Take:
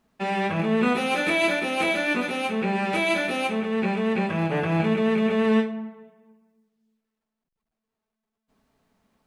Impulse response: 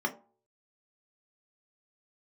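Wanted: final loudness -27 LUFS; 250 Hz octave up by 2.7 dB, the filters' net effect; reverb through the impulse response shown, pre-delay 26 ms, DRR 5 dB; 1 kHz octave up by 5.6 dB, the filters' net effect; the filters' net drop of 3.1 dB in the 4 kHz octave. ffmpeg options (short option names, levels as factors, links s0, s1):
-filter_complex "[0:a]equalizer=f=250:t=o:g=3,equalizer=f=1000:t=o:g=7.5,equalizer=f=4000:t=o:g=-5,asplit=2[s0][s1];[1:a]atrim=start_sample=2205,adelay=26[s2];[s1][s2]afir=irnorm=-1:irlink=0,volume=0.237[s3];[s0][s3]amix=inputs=2:normalize=0,volume=0.422"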